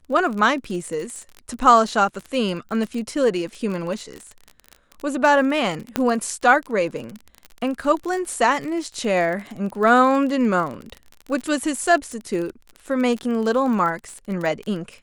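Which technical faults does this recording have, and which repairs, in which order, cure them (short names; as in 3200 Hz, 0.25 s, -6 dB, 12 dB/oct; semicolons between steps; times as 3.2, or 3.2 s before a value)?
crackle 30/s -27 dBFS
5.96 pop -6 dBFS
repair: de-click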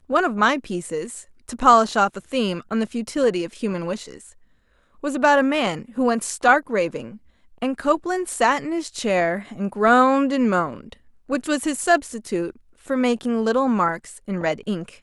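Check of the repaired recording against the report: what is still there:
5.96 pop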